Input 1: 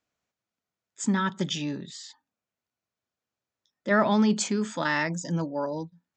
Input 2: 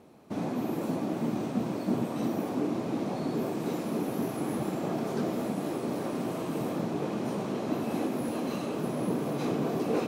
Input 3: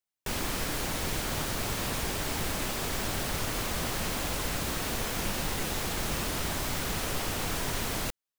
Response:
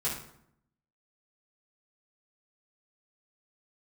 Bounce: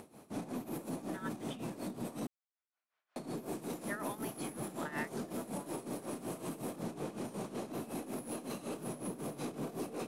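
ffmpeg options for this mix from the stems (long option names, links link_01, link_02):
-filter_complex "[0:a]highpass=930,lowpass=2400,volume=-9.5dB[link_01];[1:a]equalizer=frequency=10000:width_type=o:width=0.86:gain=13,aeval=exprs='0.158*(cos(1*acos(clip(val(0)/0.158,-1,1)))-cos(1*PI/2))+0.00224*(cos(8*acos(clip(val(0)/0.158,-1,1)))-cos(8*PI/2))':channel_layout=same,volume=-3.5dB,asplit=3[link_02][link_03][link_04];[link_02]atrim=end=2.27,asetpts=PTS-STARTPTS,afade=type=out:start_time=2.266:duration=0.004:curve=hsin[link_05];[link_03]atrim=start=2.27:end=3.16,asetpts=PTS-STARTPTS,volume=0[link_06];[link_04]atrim=start=3.16,asetpts=PTS-STARTPTS,afade=type=in:duration=0.004:curve=hsin[link_07];[link_05][link_06][link_07]concat=n=3:v=0:a=1,alimiter=level_in=6dB:limit=-24dB:level=0:latency=1:release=23,volume=-6dB,volume=0dB[link_08];[link_01][link_08]amix=inputs=2:normalize=0,acompressor=mode=upward:threshold=-46dB:ratio=2.5,tremolo=f=5.4:d=0.78"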